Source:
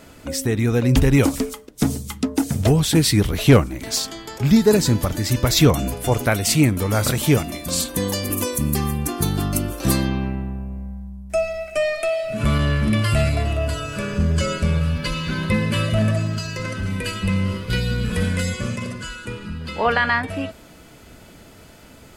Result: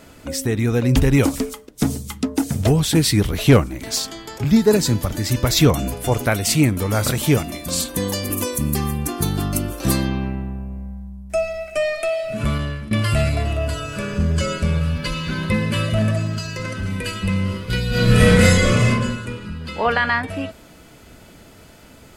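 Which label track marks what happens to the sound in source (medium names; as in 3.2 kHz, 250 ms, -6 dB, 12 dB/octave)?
4.440000	5.120000	three bands expanded up and down depth 40%
12.350000	12.910000	fade out, to -17 dB
17.890000	18.880000	reverb throw, RT60 1.1 s, DRR -11.5 dB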